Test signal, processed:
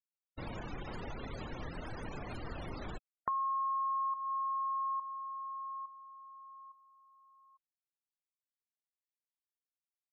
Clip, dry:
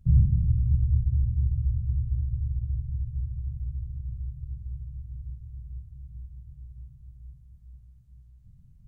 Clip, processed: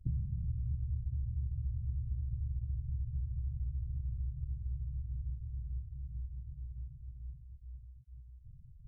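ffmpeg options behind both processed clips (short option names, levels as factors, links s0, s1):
-af "acompressor=threshold=0.0224:ratio=8,afftfilt=real='re*gte(hypot(re,im),0.0112)':imag='im*gte(hypot(re,im),0.0112)':win_size=1024:overlap=0.75"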